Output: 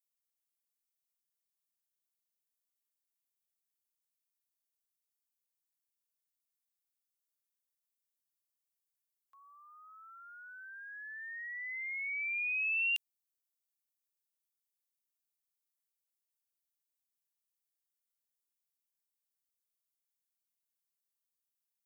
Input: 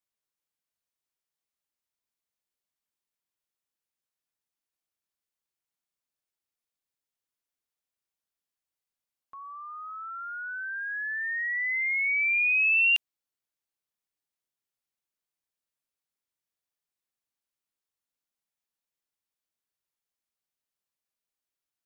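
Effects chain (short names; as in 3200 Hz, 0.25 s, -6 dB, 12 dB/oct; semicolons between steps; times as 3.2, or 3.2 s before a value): differentiator; gain -1.5 dB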